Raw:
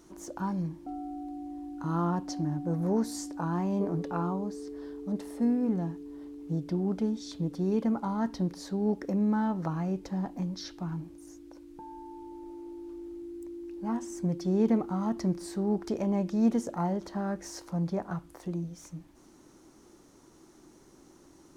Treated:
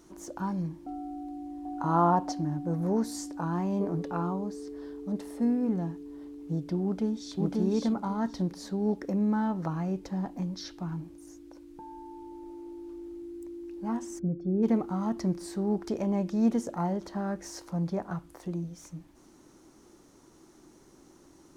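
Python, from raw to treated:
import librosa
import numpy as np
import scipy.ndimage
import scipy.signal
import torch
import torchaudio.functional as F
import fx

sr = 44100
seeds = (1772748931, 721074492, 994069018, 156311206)

y = fx.peak_eq(x, sr, hz=770.0, db=12.5, octaves=1.4, at=(1.65, 2.32))
y = fx.echo_throw(y, sr, start_s=6.83, length_s=0.56, ms=540, feedback_pct=20, wet_db=-1.0)
y = fx.moving_average(y, sr, points=45, at=(14.18, 14.62), fade=0.02)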